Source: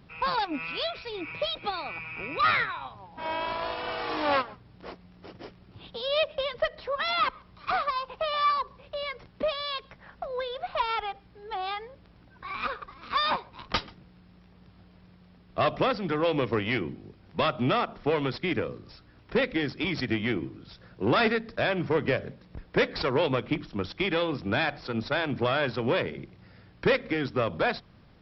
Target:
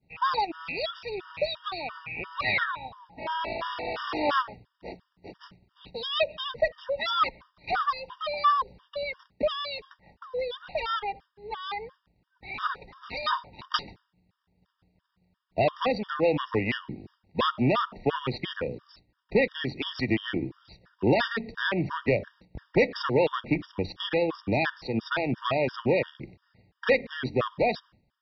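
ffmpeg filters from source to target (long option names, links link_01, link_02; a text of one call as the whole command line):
ffmpeg -i in.wav -af "agate=range=-33dB:threshold=-44dB:ratio=3:detection=peak,afftfilt=real='re*gt(sin(2*PI*2.9*pts/sr)*(1-2*mod(floor(b*sr/1024/940),2)),0)':imag='im*gt(sin(2*PI*2.9*pts/sr)*(1-2*mod(floor(b*sr/1024/940),2)),0)':win_size=1024:overlap=0.75,volume=3dB" out.wav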